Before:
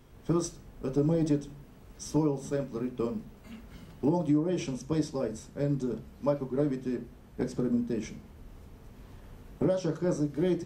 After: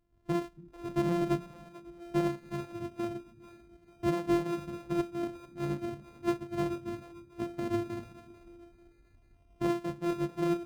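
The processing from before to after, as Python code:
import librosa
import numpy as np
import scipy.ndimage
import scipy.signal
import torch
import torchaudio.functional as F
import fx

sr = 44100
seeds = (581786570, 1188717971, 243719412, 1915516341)

y = np.r_[np.sort(x[:len(x) // 128 * 128].reshape(-1, 128), axis=1).ravel(), x[len(x) // 128 * 128:]]
y = fx.echo_split(y, sr, split_hz=330.0, low_ms=281, high_ms=442, feedback_pct=52, wet_db=-11.0)
y = fx.spectral_expand(y, sr, expansion=1.5)
y = y * librosa.db_to_amplitude(-3.5)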